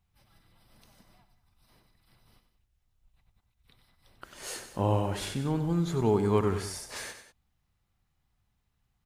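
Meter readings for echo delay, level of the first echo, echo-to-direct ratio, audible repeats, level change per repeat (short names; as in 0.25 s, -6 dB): 94 ms, -10.5 dB, -9.0 dB, 2, -4.5 dB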